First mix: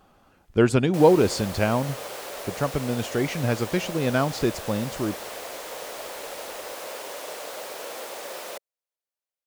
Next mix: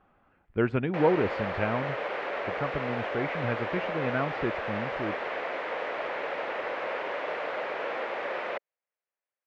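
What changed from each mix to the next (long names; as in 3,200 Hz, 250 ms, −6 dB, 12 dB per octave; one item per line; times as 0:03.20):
background +11.0 dB
master: add transistor ladder low-pass 2,600 Hz, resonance 35%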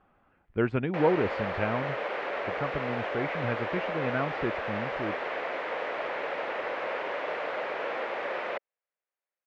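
reverb: off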